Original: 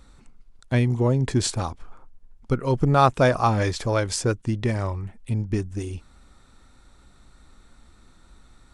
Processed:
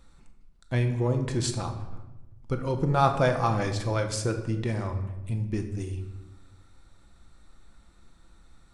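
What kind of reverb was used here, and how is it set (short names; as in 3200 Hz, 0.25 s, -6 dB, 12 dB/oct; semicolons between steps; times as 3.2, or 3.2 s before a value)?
shoebox room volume 490 m³, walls mixed, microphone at 0.76 m; gain -6 dB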